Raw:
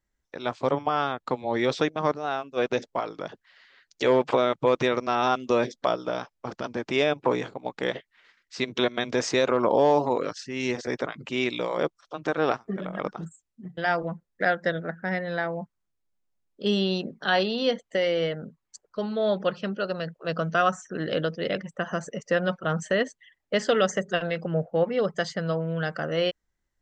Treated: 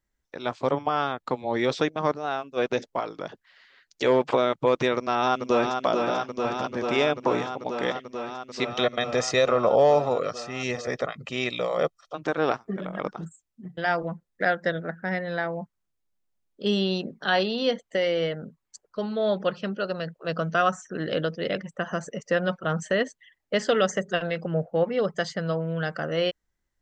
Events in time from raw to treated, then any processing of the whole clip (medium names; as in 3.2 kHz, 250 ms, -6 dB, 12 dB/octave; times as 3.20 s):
4.96–5.82 s: echo throw 440 ms, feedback 85%, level -5 dB
8.66–12.15 s: comb 1.6 ms, depth 56%